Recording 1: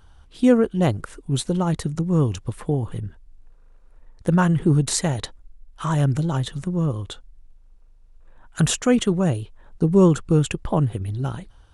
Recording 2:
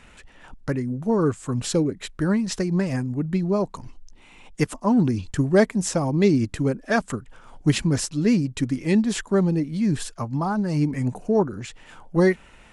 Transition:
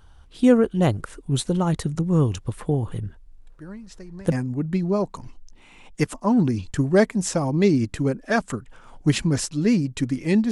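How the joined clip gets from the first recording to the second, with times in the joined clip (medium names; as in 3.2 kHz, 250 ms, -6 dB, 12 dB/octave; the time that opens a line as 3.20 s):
recording 1
3.47 s: add recording 2 from 2.07 s 0.85 s -17 dB
4.32 s: go over to recording 2 from 2.92 s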